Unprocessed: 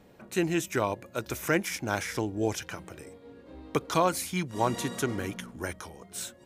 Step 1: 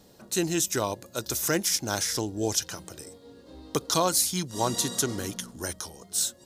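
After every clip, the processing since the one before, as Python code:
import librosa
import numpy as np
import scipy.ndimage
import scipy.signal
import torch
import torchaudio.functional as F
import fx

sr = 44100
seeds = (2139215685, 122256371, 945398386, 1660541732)

y = fx.high_shelf_res(x, sr, hz=3300.0, db=10.0, q=1.5)
y = fx.notch(y, sr, hz=2300.0, q=12.0)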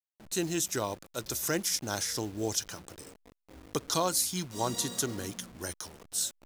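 y = fx.delta_hold(x, sr, step_db=-41.5)
y = y * librosa.db_to_amplitude(-4.5)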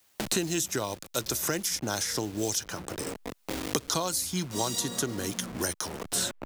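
y = fx.band_squash(x, sr, depth_pct=100)
y = y * librosa.db_to_amplitude(1.5)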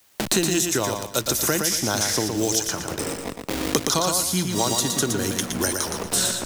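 y = fx.echo_feedback(x, sr, ms=117, feedback_pct=32, wet_db=-5)
y = y * librosa.db_to_amplitude(6.5)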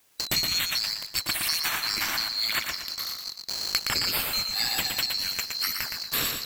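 y = fx.band_swap(x, sr, width_hz=4000)
y = y * librosa.db_to_amplitude(-5.0)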